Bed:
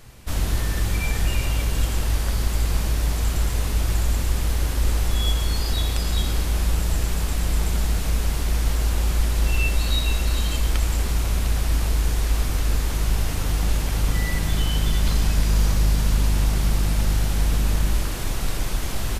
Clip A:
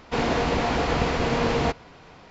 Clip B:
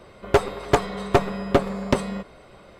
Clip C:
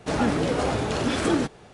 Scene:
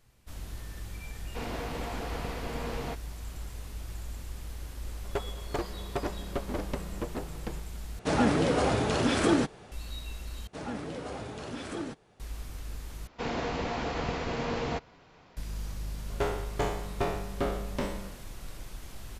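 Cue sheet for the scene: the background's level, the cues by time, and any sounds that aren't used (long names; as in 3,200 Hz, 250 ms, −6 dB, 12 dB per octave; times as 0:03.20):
bed −18 dB
0:01.23: mix in A −13.5 dB
0:04.81: mix in B −16 dB + delay with pitch and tempo change per echo 368 ms, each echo −3 semitones, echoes 3
0:07.99: overwrite with C −1.5 dB
0:10.47: overwrite with C −14 dB
0:13.07: overwrite with A −9 dB
0:15.86: mix in B −15.5 dB + peak hold with a decay on every bin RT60 0.79 s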